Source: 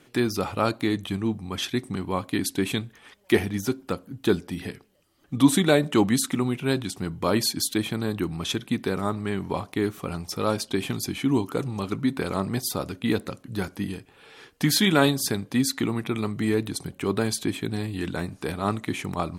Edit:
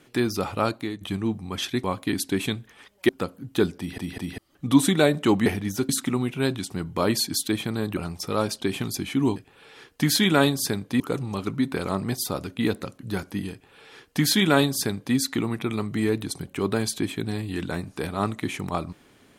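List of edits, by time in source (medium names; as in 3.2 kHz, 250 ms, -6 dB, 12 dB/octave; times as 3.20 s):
0.62–1.01 s: fade out, to -13 dB
1.84–2.10 s: delete
3.35–3.78 s: move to 6.15 s
4.47 s: stutter in place 0.20 s, 3 plays
8.23–10.06 s: delete
13.97–15.61 s: copy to 11.45 s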